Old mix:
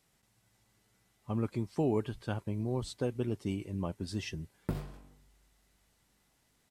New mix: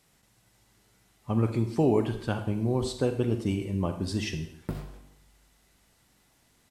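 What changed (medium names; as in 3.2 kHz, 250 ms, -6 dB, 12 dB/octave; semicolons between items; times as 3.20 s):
speech +5.0 dB; reverb: on, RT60 0.70 s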